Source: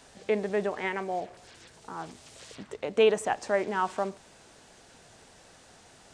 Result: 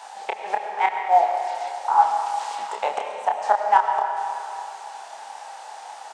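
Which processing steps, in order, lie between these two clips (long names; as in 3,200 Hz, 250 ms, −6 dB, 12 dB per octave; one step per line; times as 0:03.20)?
high-shelf EQ 7,800 Hz −2 dB
gate with flip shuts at −19 dBFS, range −26 dB
high-pass with resonance 840 Hz, resonance Q 9.3
double-tracking delay 29 ms −4.5 dB
convolution reverb RT60 2.8 s, pre-delay 55 ms, DRR 4 dB
level +7 dB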